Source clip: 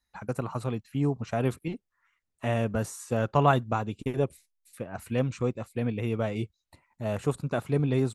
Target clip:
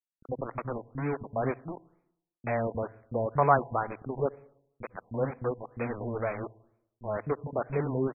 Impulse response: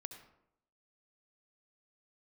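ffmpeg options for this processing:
-filter_complex "[0:a]aeval=exprs='val(0)*gte(abs(val(0)),0.0299)':c=same,lowshelf=f=210:g=-10.5,acrossover=split=240[a][b];[b]adelay=30[c];[a][c]amix=inputs=2:normalize=0,asplit=2[d][e];[1:a]atrim=start_sample=2205,lowshelf=f=120:g=9[f];[e][f]afir=irnorm=-1:irlink=0,volume=-9.5dB[g];[d][g]amix=inputs=2:normalize=0,afftfilt=real='re*lt(b*sr/1024,1000*pow(2600/1000,0.5+0.5*sin(2*PI*2.1*pts/sr)))':imag='im*lt(b*sr/1024,1000*pow(2600/1000,0.5+0.5*sin(2*PI*2.1*pts/sr)))':win_size=1024:overlap=0.75"

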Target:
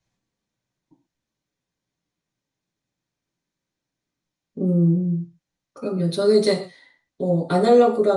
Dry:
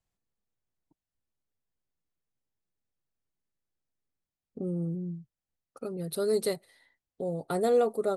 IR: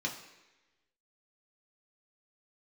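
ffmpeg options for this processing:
-filter_complex "[1:a]atrim=start_sample=2205,atrim=end_sample=6615[a];[0:a][a]afir=irnorm=-1:irlink=0,aresample=22050,aresample=44100,volume=7dB"

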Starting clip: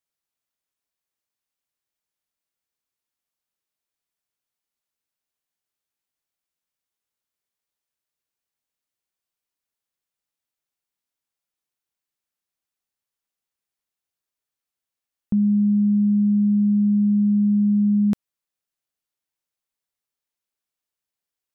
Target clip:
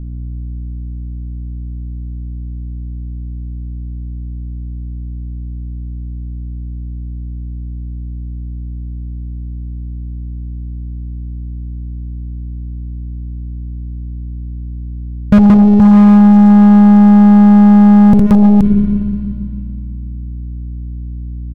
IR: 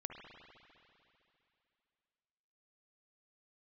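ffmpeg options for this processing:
-filter_complex "[0:a]asplit=2[a][b];[b]aecho=0:1:61|176|217|475:0.562|0.668|0.2|0.473[c];[a][c]amix=inputs=2:normalize=0,aeval=exprs='sgn(val(0))*max(abs(val(0))-0.00631,0)':c=same,lowshelf=f=170:g=10.5,acontrast=61,aeval=exprs='val(0)+0.00562*(sin(2*PI*60*n/s)+sin(2*PI*2*60*n/s)/2+sin(2*PI*3*60*n/s)/3+sin(2*PI*4*60*n/s)/4+sin(2*PI*5*60*n/s)/5)':c=same,asplit=2[d][e];[1:a]atrim=start_sample=2205,asetrate=48510,aresample=44100,lowshelf=f=62:g=11[f];[e][f]afir=irnorm=-1:irlink=0,volume=-3dB[g];[d][g]amix=inputs=2:normalize=0,acontrast=32,bass=f=250:g=6,treble=f=4k:g=1,aeval=exprs='1.06*(cos(1*acos(clip(val(0)/1.06,-1,1)))-cos(1*PI/2))+0.15*(cos(4*acos(clip(val(0)/1.06,-1,1)))-cos(4*PI/2))+0.00841*(cos(5*acos(clip(val(0)/1.06,-1,1)))-cos(5*PI/2))':c=same,alimiter=level_in=7dB:limit=-1dB:release=50:level=0:latency=1,volume=-1dB"

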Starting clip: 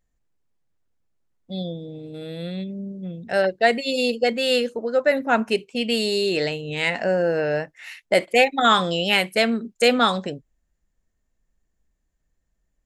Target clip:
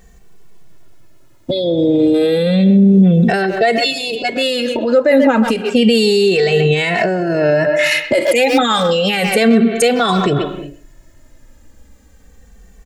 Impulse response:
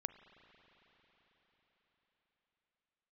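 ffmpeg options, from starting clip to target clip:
-filter_complex "[0:a]equalizer=f=380:t=o:w=1.5:g=3,asplit=2[a][b];[b]adelay=130,highpass=300,lowpass=3.4k,asoftclip=type=hard:threshold=-12.5dB,volume=-15dB[c];[a][c]amix=inputs=2:normalize=0,asplit=2[d][e];[1:a]atrim=start_sample=2205,afade=t=out:st=0.43:d=0.01,atrim=end_sample=19404[f];[e][f]afir=irnorm=-1:irlink=0,volume=-6dB[g];[d][g]amix=inputs=2:normalize=0,acompressor=threshold=-31dB:ratio=4,asettb=1/sr,asplit=3[h][i][j];[h]atrim=end=8.214[k];[i]atrim=start=8.21:end=8.83,asetpts=PTS-STARTPTS,afade=t=in:d=0.004:c=qsin,afade=t=out:st=0.616:d=0.004:c=qsin,highshelf=f=4.9k:g=9.5[l];[j]atrim=start=8.826[m];[k][l]acrossfade=d=0.004:c1=hsin:c2=qsin[n];[n][m]acrossfade=d=0.004:c1=qsin:c2=hsin,alimiter=level_in=30.5dB:limit=-1dB:release=50:level=0:latency=1,asplit=2[o][p];[p]adelay=2.2,afreqshift=-0.31[q];[o][q]amix=inputs=2:normalize=1,volume=-1.5dB"

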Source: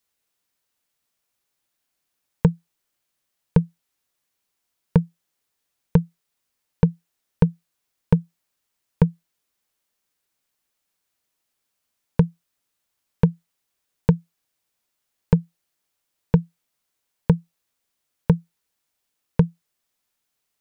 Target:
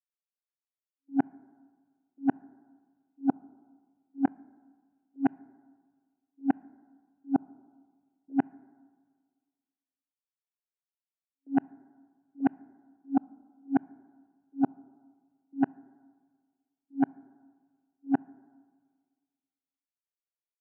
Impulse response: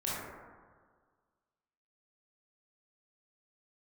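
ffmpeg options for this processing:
-filter_complex "[0:a]areverse,afwtdn=0.0224,asetrate=72056,aresample=44100,atempo=0.612027,highpass=240,lowpass=2.4k,asplit=2[a][b];[1:a]atrim=start_sample=2205[c];[b][c]afir=irnorm=-1:irlink=0,volume=-28.5dB[d];[a][d]amix=inputs=2:normalize=0,volume=-6dB"

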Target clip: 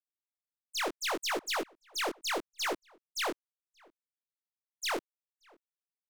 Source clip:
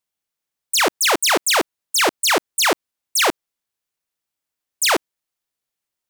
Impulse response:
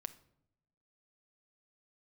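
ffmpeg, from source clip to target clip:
-filter_complex "[0:a]agate=range=-28dB:threshold=-19dB:ratio=16:detection=peak,lowpass=f=2.4k:p=1,lowshelf=f=130:g=-7.5,asoftclip=type=tanh:threshold=-27.5dB,flanger=delay=16.5:depth=6.9:speed=0.72,asplit=2[a][b];[b]adelay=577.3,volume=-27dB,highshelf=f=4k:g=-13[c];[a][c]amix=inputs=2:normalize=0"

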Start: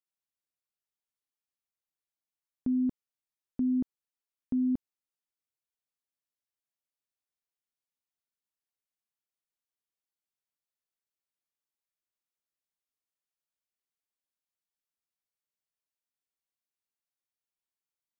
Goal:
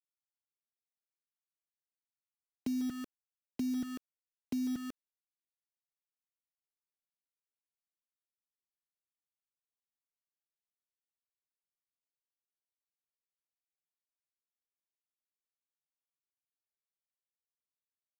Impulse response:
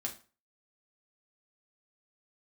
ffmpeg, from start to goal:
-filter_complex "[0:a]acrossover=split=120|290[a][b][c];[a]alimiter=level_in=19.5dB:limit=-24dB:level=0:latency=1:release=178,volume=-19.5dB[d];[c]aecho=1:1:147:0.668[e];[d][b][e]amix=inputs=3:normalize=0,acrusher=bits=6:mix=0:aa=0.000001,acompressor=threshold=-35dB:ratio=2.5"

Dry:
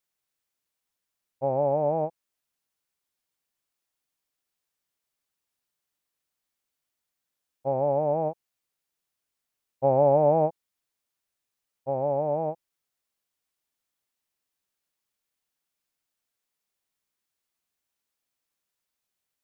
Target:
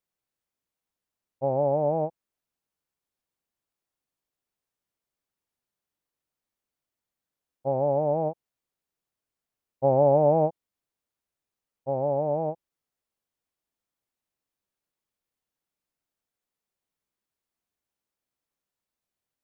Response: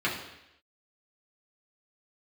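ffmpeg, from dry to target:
-af "tiltshelf=f=1.2k:g=4.5,volume=-2.5dB"

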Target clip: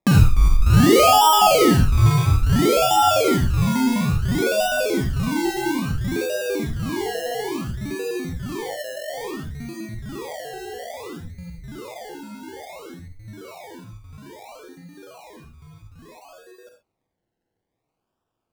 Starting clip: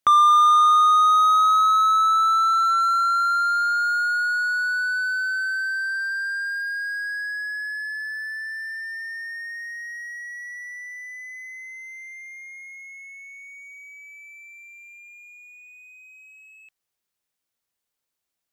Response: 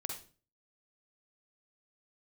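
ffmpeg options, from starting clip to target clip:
-filter_complex "[0:a]acrusher=samples=29:mix=1:aa=0.000001:lfo=1:lforange=17.4:lforate=0.59[a];[1:a]atrim=start_sample=2205,afade=t=out:st=0.19:d=0.01,atrim=end_sample=8820[b];[a][b]afir=irnorm=-1:irlink=0,volume=3dB"

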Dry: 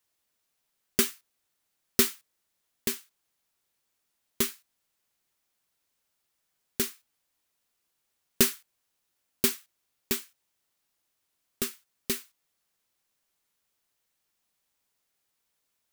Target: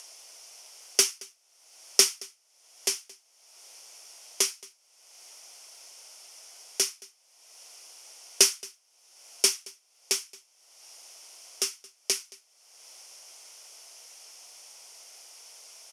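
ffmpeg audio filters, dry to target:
-filter_complex "[0:a]highshelf=f=4k:g=11,acompressor=mode=upward:threshold=-23dB:ratio=2.5,highpass=f=420:w=0.5412,highpass=f=420:w=1.3066,equalizer=f=680:t=q:w=4:g=5,equalizer=f=1.2k:t=q:w=4:g=-3,equalizer=f=1.7k:t=q:w=4:g=-9,equalizer=f=3.9k:t=q:w=4:g=-10,equalizer=f=5.5k:t=q:w=4:g=7,equalizer=f=7.8k:t=q:w=4:g=-8,lowpass=f=9.2k:w=0.5412,lowpass=f=9.2k:w=1.3066,asplit=2[a][b];[b]aecho=0:1:223:0.0708[c];[a][c]amix=inputs=2:normalize=0,volume=1.5dB"

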